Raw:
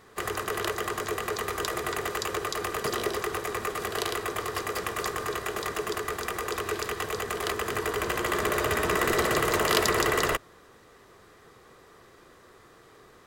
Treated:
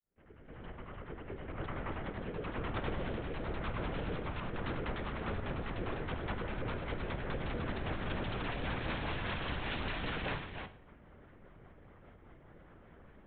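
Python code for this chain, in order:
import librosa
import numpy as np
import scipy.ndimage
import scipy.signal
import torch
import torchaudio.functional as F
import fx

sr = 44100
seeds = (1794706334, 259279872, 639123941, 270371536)

y = fx.fade_in_head(x, sr, length_s=3.26)
y = scipy.signal.sosfilt(scipy.signal.butter(6, 3100.0, 'lowpass', fs=sr, output='sos'), y)
y = fx.low_shelf(y, sr, hz=440.0, db=8.0)
y = 10.0 ** (-25.5 / 20.0) * (np.abs((y / 10.0 ** (-25.5 / 20.0) + 3.0) % 4.0 - 2.0) - 1.0)
y = fx.rotary_switch(y, sr, hz=1.0, then_hz=5.0, switch_at_s=3.94)
y = y + 10.0 ** (-6.5 / 20.0) * np.pad(y, (int(298 * sr / 1000.0), 0))[:len(y)]
y = fx.lpc_vocoder(y, sr, seeds[0], excitation='whisper', order=8)
y = fx.rev_schroeder(y, sr, rt60_s=0.52, comb_ms=31, drr_db=12.5)
y = y * 10.0 ** (-5.0 / 20.0)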